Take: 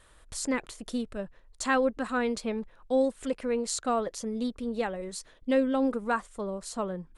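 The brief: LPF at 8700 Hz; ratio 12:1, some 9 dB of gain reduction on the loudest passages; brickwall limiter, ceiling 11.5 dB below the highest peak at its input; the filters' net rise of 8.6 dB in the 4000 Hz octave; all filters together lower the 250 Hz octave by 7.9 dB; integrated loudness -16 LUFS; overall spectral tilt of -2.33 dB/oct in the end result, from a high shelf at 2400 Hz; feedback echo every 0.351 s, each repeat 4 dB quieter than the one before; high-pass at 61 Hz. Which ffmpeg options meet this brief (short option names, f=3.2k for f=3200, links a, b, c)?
-af "highpass=61,lowpass=8.7k,equalizer=f=250:t=o:g=-8.5,highshelf=f=2.4k:g=4.5,equalizer=f=4k:t=o:g=6.5,acompressor=threshold=-30dB:ratio=12,alimiter=level_in=2.5dB:limit=-24dB:level=0:latency=1,volume=-2.5dB,aecho=1:1:351|702|1053|1404|1755|2106|2457|2808|3159:0.631|0.398|0.25|0.158|0.0994|0.0626|0.0394|0.0249|0.0157,volume=19.5dB"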